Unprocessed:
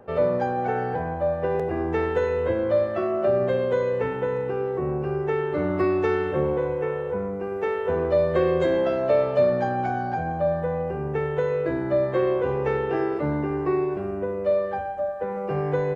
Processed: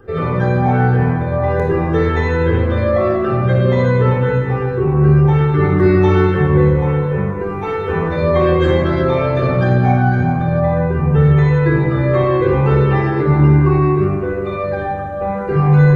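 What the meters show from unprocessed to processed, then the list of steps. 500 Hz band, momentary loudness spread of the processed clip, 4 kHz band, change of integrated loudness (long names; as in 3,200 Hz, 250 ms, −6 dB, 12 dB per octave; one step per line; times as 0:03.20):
+5.5 dB, 8 LU, can't be measured, +10.0 dB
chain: all-pass phaser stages 12, 2.6 Hz, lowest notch 470–1,000 Hz
rectangular room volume 2,100 cubic metres, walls mixed, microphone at 3.8 metres
level +7 dB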